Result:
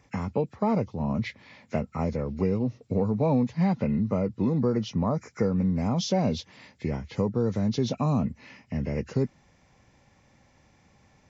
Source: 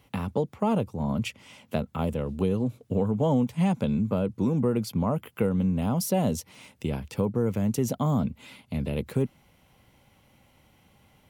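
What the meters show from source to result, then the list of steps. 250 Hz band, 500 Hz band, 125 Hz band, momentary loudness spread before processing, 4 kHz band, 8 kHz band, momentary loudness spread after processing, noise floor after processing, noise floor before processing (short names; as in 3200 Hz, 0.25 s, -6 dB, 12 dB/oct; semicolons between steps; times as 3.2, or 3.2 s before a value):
0.0 dB, 0.0 dB, 0.0 dB, 8 LU, +2.0 dB, -5.0 dB, 8 LU, -62 dBFS, -62 dBFS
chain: nonlinear frequency compression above 1300 Hz 1.5:1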